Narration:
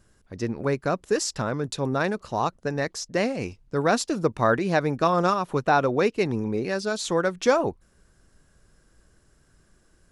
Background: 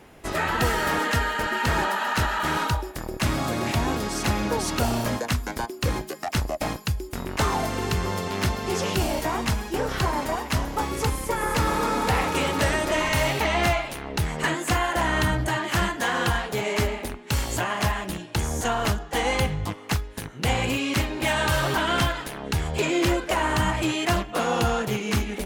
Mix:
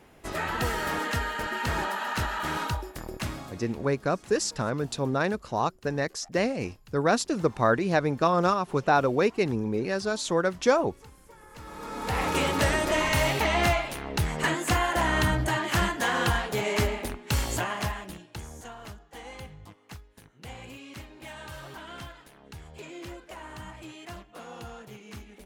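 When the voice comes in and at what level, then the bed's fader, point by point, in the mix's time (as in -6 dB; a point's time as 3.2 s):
3.20 s, -1.5 dB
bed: 3.15 s -5.5 dB
3.79 s -26 dB
11.47 s -26 dB
12.29 s -1.5 dB
17.5 s -1.5 dB
18.76 s -19 dB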